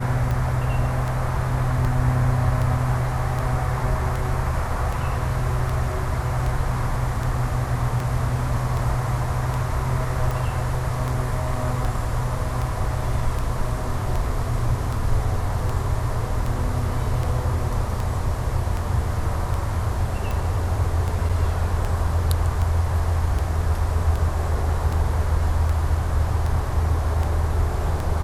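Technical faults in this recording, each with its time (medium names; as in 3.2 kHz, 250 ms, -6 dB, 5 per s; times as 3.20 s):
tick 78 rpm
21.29 s: dropout 4.9 ms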